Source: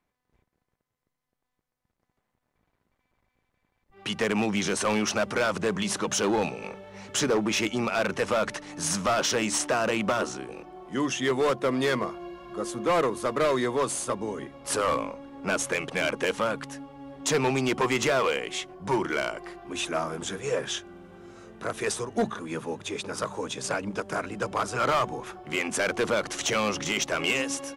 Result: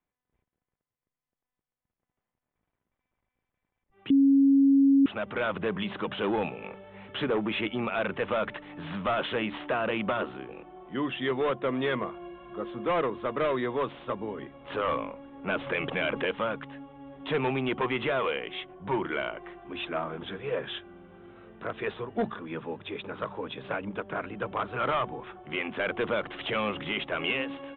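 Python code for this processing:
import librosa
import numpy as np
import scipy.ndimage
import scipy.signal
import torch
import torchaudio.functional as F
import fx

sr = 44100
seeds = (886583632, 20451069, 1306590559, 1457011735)

y = fx.env_flatten(x, sr, amount_pct=50, at=(15.49, 16.29))
y = fx.edit(y, sr, fx.bleep(start_s=4.1, length_s=0.96, hz=275.0, db=-7.5), tone=tone)
y = scipy.signal.sosfilt(scipy.signal.butter(16, 3600.0, 'lowpass', fs=sr, output='sos'), y)
y = fx.rider(y, sr, range_db=3, speed_s=0.5)
y = y * librosa.db_to_amplitude(-6.0)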